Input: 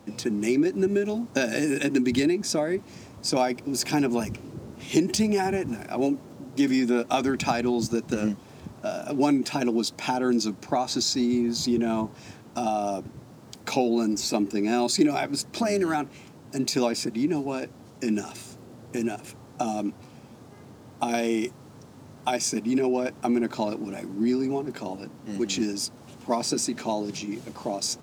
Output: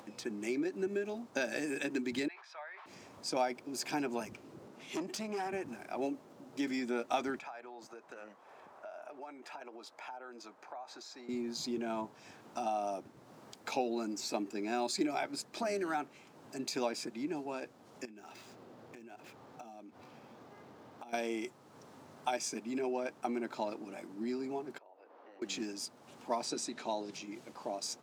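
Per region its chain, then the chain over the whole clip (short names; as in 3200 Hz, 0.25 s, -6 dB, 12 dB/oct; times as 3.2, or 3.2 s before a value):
2.28–2.86 inverse Chebyshev high-pass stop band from 200 Hz, stop band 70 dB + air absorption 360 m + sustainer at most 51 dB/s
4.68–5.53 HPF 120 Hz 24 dB/oct + high shelf 9100 Hz -3.5 dB + tube stage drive 20 dB, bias 0.4
7.39–11.29 three-band isolator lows -20 dB, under 480 Hz, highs -13 dB, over 2100 Hz + compressor 5:1, threshold -35 dBFS
18.05–21.13 median filter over 5 samples + compressor, threshold -38 dBFS
24.78–25.42 HPF 450 Hz 24 dB/oct + compressor 3:1, threshold -49 dBFS + tape spacing loss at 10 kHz 42 dB
26.45–27.12 LPF 11000 Hz + bell 3800 Hz +6.5 dB 0.2 oct
whole clip: HPF 820 Hz 6 dB/oct; high shelf 2300 Hz -9 dB; upward compressor, threshold -44 dBFS; gain -3.5 dB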